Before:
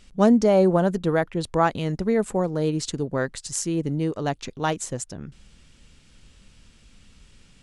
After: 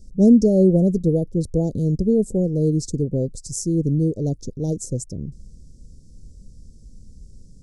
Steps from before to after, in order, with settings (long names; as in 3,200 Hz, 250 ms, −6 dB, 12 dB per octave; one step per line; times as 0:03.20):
elliptic band-stop filter 510–5,400 Hz, stop band 50 dB
low-shelf EQ 260 Hz +11 dB